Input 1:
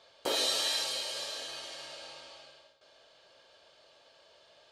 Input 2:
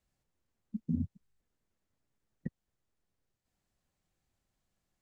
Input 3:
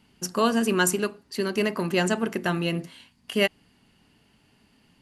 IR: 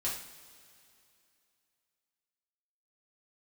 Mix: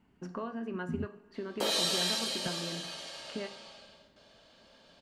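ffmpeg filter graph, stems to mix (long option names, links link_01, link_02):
-filter_complex "[0:a]adelay=1350,volume=0dB[link_01];[1:a]volume=-4dB[link_02];[2:a]lowpass=1700,bandreject=frequency=60:width_type=h:width=6,bandreject=frequency=120:width_type=h:width=6,acompressor=threshold=-31dB:ratio=6,volume=-7dB,asplit=2[link_03][link_04];[link_04]volume=-10dB[link_05];[3:a]atrim=start_sample=2205[link_06];[link_05][link_06]afir=irnorm=-1:irlink=0[link_07];[link_01][link_02][link_03][link_07]amix=inputs=4:normalize=0"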